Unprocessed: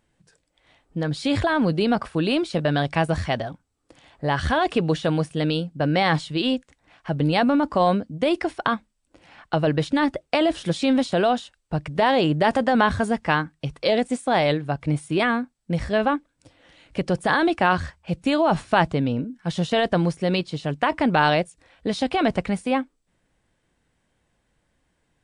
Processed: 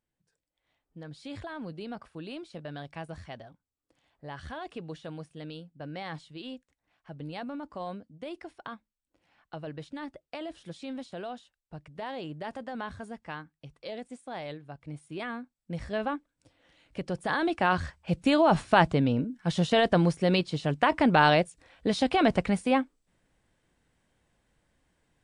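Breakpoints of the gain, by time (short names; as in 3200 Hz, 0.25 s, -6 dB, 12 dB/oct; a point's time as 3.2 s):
14.82 s -18.5 dB
15.91 s -10 dB
17.15 s -10 dB
18.13 s -2 dB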